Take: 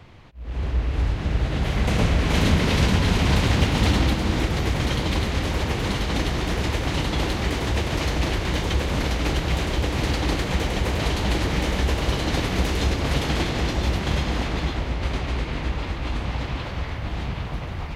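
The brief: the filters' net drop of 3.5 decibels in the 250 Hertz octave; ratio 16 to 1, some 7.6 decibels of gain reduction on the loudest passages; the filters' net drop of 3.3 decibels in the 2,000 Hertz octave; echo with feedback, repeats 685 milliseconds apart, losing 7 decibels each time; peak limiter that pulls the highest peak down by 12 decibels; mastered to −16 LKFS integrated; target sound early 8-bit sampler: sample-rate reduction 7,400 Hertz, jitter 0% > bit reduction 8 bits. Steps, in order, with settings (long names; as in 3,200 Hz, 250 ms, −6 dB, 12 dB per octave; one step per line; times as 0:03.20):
parametric band 250 Hz −5 dB
parametric band 2,000 Hz −4 dB
downward compressor 16 to 1, threshold −23 dBFS
brickwall limiter −26.5 dBFS
repeating echo 685 ms, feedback 45%, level −7 dB
sample-rate reduction 7,400 Hz, jitter 0%
bit reduction 8 bits
level +18.5 dB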